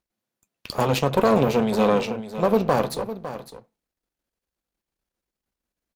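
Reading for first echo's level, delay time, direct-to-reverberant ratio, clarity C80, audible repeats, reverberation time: -12.5 dB, 556 ms, no reverb, no reverb, 1, no reverb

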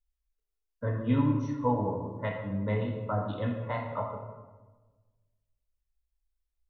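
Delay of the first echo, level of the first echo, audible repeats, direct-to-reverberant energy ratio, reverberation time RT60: no echo, no echo, no echo, 1.5 dB, 1.3 s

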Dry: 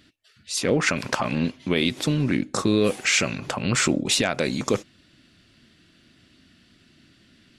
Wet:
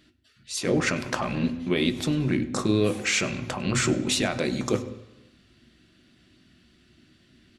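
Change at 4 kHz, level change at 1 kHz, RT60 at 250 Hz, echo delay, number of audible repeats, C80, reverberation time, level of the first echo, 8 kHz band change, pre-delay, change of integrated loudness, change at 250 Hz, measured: -4.0 dB, -3.0 dB, 1.1 s, 100 ms, 1, 14.5 dB, 1.0 s, -21.5 dB, -4.0 dB, 3 ms, -2.5 dB, -1.0 dB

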